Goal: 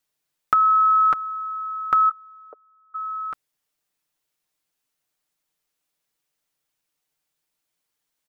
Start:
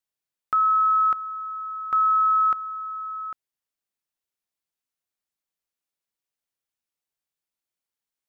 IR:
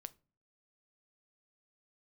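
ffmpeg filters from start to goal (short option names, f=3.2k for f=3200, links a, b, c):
-filter_complex "[0:a]asplit=3[a][b][c];[a]afade=t=out:st=2.09:d=0.02[d];[b]asuperpass=centerf=490:order=4:qfactor=2.4,afade=t=in:st=2.09:d=0.02,afade=t=out:st=2.94:d=0.02[e];[c]afade=t=in:st=2.94:d=0.02[f];[d][e][f]amix=inputs=3:normalize=0,aecho=1:1:6.6:0.48,volume=8.5dB"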